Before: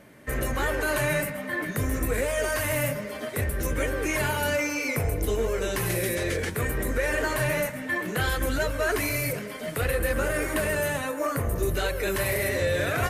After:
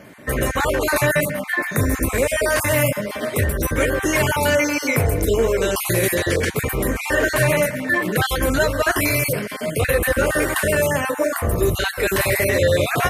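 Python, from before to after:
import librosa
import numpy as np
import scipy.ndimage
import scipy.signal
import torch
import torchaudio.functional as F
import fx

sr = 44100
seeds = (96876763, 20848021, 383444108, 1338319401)

y = fx.spec_dropout(x, sr, seeds[0], share_pct=22)
y = scipy.signal.sosfilt(scipy.signal.butter(2, 61.0, 'highpass', fs=sr, output='sos'), y)
y = F.gain(torch.from_numpy(y), 9.0).numpy()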